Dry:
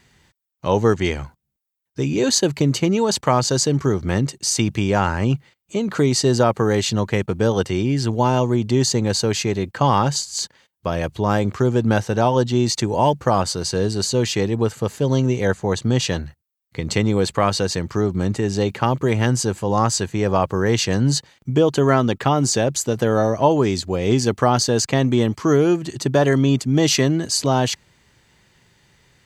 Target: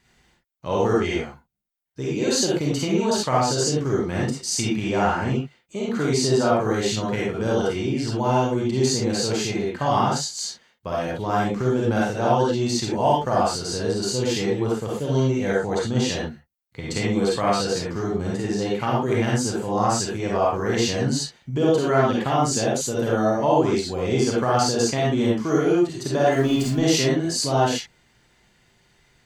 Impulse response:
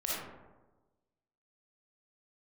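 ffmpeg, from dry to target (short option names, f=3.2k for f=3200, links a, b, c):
-filter_complex "[0:a]asettb=1/sr,asplit=3[a][b][c];[a]atrim=end=26.324[d];[b]atrim=start=26.32:end=26.73,asetpts=PTS-STARTPTS,afade=t=in:d=0.004:c=qsin,afade=t=out:st=0.406:d=0.004:c=qsin,aeval=exprs='val(0)+0.5*0.0376*sgn(val(0))':c=same[e];[c]atrim=start=26.726[f];[d][e]acrossfade=d=0.004:c1=hsin:c2=qsin[g];[g][f]acrossfade=d=0.004:c1=qsin:c2=hsin[h];[1:a]atrim=start_sample=2205,atrim=end_sample=6174,asetrate=48510,aresample=44100[i];[h][i]afir=irnorm=-1:irlink=0,volume=-5.5dB"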